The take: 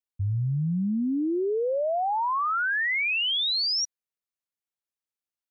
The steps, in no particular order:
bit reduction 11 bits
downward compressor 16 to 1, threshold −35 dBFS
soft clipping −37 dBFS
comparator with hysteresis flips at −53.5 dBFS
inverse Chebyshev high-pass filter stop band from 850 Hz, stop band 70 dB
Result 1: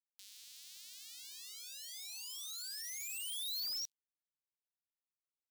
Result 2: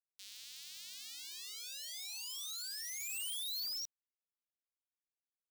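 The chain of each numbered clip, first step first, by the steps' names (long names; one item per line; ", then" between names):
comparator with hysteresis, then downward compressor, then bit reduction, then inverse Chebyshev high-pass filter, then soft clipping
bit reduction, then comparator with hysteresis, then inverse Chebyshev high-pass filter, then downward compressor, then soft clipping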